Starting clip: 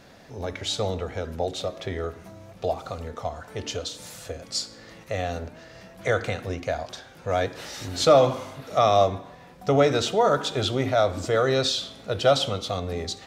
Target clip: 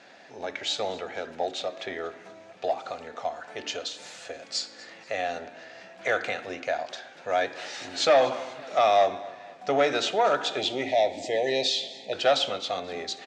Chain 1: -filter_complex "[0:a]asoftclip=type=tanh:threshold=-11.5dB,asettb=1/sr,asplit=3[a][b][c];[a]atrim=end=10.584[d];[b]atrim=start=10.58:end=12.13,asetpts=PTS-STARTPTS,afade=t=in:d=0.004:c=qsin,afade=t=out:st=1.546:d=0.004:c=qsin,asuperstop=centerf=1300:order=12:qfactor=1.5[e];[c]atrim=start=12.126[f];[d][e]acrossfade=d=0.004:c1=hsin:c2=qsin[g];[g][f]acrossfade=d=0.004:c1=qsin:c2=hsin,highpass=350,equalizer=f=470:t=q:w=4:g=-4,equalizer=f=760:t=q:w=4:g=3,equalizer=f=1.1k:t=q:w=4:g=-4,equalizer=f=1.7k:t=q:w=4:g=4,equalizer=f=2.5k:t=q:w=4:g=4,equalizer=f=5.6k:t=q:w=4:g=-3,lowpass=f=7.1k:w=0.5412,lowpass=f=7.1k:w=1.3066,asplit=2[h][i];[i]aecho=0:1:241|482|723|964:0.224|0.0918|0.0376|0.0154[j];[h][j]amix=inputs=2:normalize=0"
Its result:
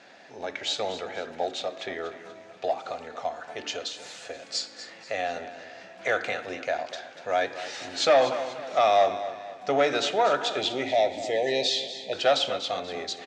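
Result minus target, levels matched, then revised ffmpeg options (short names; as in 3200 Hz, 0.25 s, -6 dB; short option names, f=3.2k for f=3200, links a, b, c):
echo-to-direct +7 dB
-filter_complex "[0:a]asoftclip=type=tanh:threshold=-11.5dB,asettb=1/sr,asplit=3[a][b][c];[a]atrim=end=10.584[d];[b]atrim=start=10.58:end=12.13,asetpts=PTS-STARTPTS,afade=t=in:d=0.004:c=qsin,afade=t=out:st=1.546:d=0.004:c=qsin,asuperstop=centerf=1300:order=12:qfactor=1.5[e];[c]atrim=start=12.126[f];[d][e]acrossfade=d=0.004:c1=hsin:c2=qsin[g];[g][f]acrossfade=d=0.004:c1=qsin:c2=hsin,highpass=350,equalizer=f=470:t=q:w=4:g=-4,equalizer=f=760:t=q:w=4:g=3,equalizer=f=1.1k:t=q:w=4:g=-4,equalizer=f=1.7k:t=q:w=4:g=4,equalizer=f=2.5k:t=q:w=4:g=4,equalizer=f=5.6k:t=q:w=4:g=-3,lowpass=f=7.1k:w=0.5412,lowpass=f=7.1k:w=1.3066,asplit=2[h][i];[i]aecho=0:1:241|482|723:0.1|0.041|0.0168[j];[h][j]amix=inputs=2:normalize=0"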